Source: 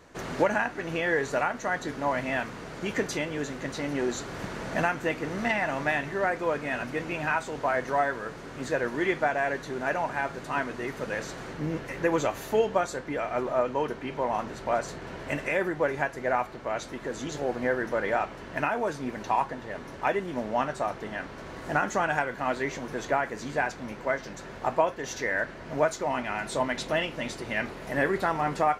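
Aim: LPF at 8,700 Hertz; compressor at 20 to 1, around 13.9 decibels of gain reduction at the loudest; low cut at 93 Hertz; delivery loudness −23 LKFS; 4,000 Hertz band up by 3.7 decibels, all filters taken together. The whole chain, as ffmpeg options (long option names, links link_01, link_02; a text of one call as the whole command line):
ffmpeg -i in.wav -af "highpass=93,lowpass=8700,equalizer=frequency=4000:width_type=o:gain=5,acompressor=threshold=-32dB:ratio=20,volume=14.5dB" out.wav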